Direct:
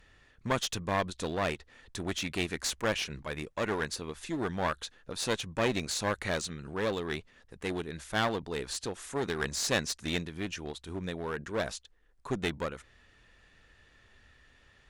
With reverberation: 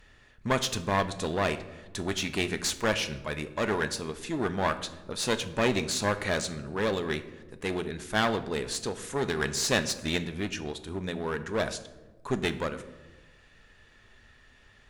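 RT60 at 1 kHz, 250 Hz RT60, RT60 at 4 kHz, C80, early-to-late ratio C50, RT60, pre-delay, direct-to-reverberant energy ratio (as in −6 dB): 1.1 s, 1.5 s, 0.65 s, 16.0 dB, 13.5 dB, 1.2 s, 5 ms, 9.0 dB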